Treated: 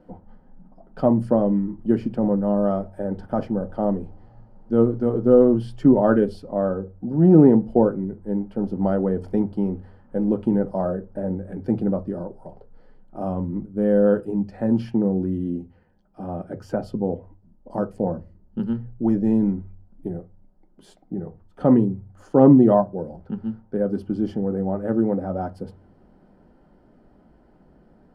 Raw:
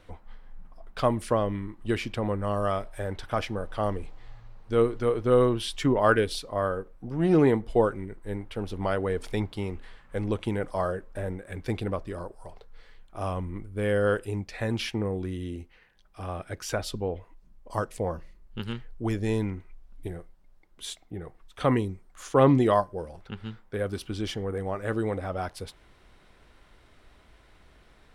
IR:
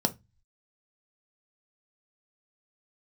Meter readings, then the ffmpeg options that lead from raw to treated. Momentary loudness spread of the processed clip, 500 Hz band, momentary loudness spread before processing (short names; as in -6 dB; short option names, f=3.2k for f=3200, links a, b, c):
17 LU, +5.0 dB, 18 LU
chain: -filter_complex "[0:a]tiltshelf=f=1.2k:g=6.5,asplit=2[a][b];[1:a]atrim=start_sample=2205,lowpass=2.5k[c];[b][c]afir=irnorm=-1:irlink=0,volume=-2.5dB[d];[a][d]amix=inputs=2:normalize=0,volume=-10.5dB"